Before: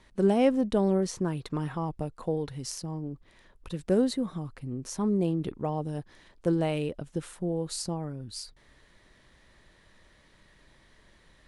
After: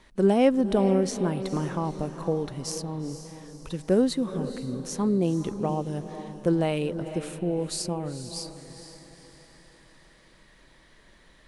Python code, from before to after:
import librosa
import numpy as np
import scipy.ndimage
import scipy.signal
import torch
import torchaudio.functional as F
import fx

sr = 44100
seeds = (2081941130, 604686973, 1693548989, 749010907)

y = fx.peak_eq(x, sr, hz=86.0, db=-8.0, octaves=0.77)
y = fx.echo_diffused(y, sr, ms=465, feedback_pct=45, wet_db=-11.0)
y = F.gain(torch.from_numpy(y), 3.0).numpy()